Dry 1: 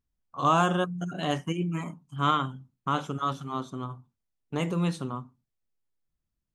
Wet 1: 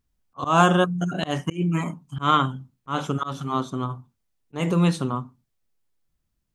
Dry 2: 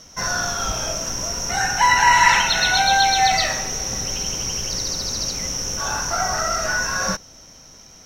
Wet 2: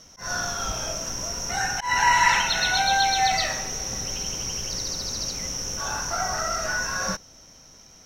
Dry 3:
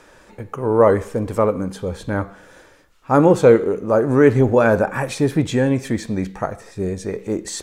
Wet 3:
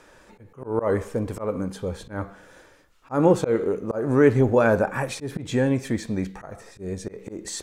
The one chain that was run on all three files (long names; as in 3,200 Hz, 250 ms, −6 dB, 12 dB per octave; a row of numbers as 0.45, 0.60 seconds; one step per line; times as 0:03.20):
volume swells 160 ms
loudness normalisation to −24 LKFS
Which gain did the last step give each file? +7.5, −4.5, −4.0 decibels